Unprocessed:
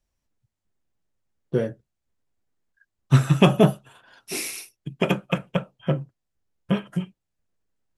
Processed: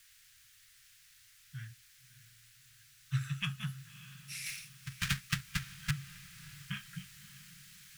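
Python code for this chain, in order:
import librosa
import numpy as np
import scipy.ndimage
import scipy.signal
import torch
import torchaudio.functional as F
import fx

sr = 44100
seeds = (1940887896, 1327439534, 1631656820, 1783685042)

p1 = fx.halfwave_hold(x, sr, at=(4.46, 5.91))
p2 = p1 * (1.0 - 0.35 / 2.0 + 0.35 / 2.0 * np.cos(2.0 * np.pi * 4.9 * (np.arange(len(p1)) / sr)))
p3 = fx.quant_dither(p2, sr, seeds[0], bits=8, dither='triangular')
p4 = scipy.signal.sosfilt(scipy.signal.cheby1(3, 1.0, [120.0, 1600.0], 'bandstop', fs=sr, output='sos'), p3)
p5 = fx.high_shelf(p4, sr, hz=9900.0, db=-8.5)
p6 = fx.rider(p5, sr, range_db=4, speed_s=2.0)
p7 = p6 + fx.echo_diffused(p6, sr, ms=605, feedback_pct=47, wet_db=-16, dry=0)
y = p7 * librosa.db_to_amplitude(-5.5)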